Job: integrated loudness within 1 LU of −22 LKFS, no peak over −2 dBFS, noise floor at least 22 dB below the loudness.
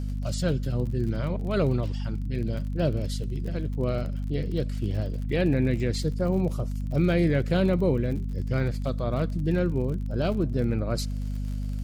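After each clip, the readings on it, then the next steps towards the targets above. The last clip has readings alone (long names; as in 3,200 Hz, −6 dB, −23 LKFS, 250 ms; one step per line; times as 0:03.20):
crackle rate 42 per second; mains hum 50 Hz; hum harmonics up to 250 Hz; level of the hum −27 dBFS; integrated loudness −27.5 LKFS; sample peak −12.5 dBFS; target loudness −22.0 LKFS
→ click removal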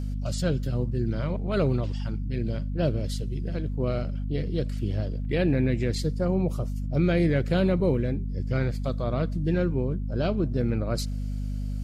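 crackle rate 0.084 per second; mains hum 50 Hz; hum harmonics up to 250 Hz; level of the hum −27 dBFS
→ hum removal 50 Hz, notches 5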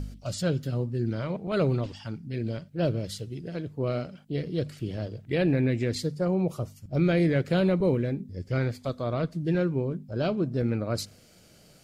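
mains hum none found; integrated loudness −28.5 LKFS; sample peak −15.0 dBFS; target loudness −22.0 LKFS
→ level +6.5 dB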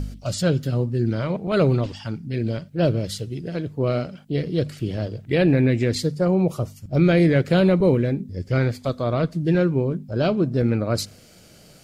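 integrated loudness −22.0 LKFS; sample peak −8.5 dBFS; background noise floor −49 dBFS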